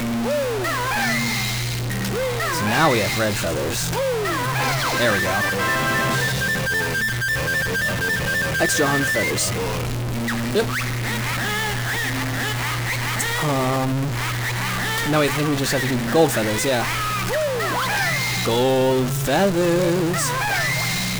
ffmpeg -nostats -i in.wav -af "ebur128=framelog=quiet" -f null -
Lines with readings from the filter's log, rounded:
Integrated loudness:
  I:         -20.6 LUFS
  Threshold: -30.6 LUFS
Loudness range:
  LRA:         2.6 LU
  Threshold: -40.6 LUFS
  LRA low:   -22.2 LUFS
  LRA high:  -19.6 LUFS